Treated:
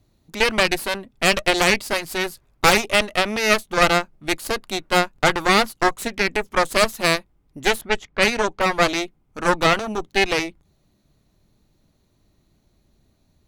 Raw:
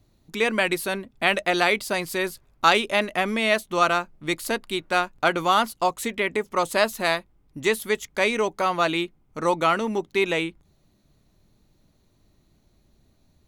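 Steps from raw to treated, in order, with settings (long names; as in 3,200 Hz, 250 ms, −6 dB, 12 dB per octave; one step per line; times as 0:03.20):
harmonic generator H 6 −8 dB, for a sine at −4 dBFS
0:07.81–0:08.61: low-pass that shuts in the quiet parts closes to 1,200 Hz, open at −14 dBFS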